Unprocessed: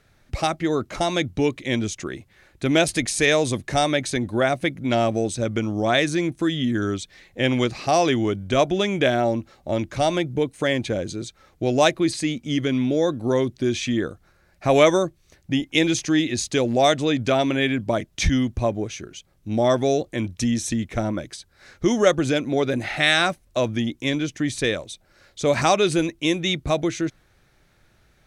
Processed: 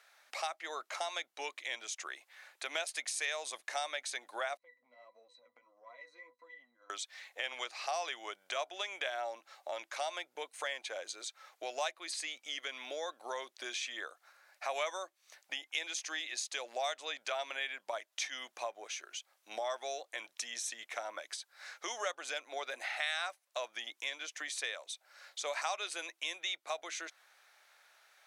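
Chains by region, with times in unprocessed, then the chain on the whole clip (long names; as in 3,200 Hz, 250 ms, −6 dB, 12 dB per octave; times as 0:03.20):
0:04.57–0:06.90: resonances in every octave B, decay 0.16 s + downward compressor 12 to 1, threshold −36 dBFS + flanger 1.6 Hz, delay 4.2 ms, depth 4.7 ms, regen +42%
whole clip: high-pass filter 700 Hz 24 dB per octave; downward compressor 2.5 to 1, threshold −41 dBFS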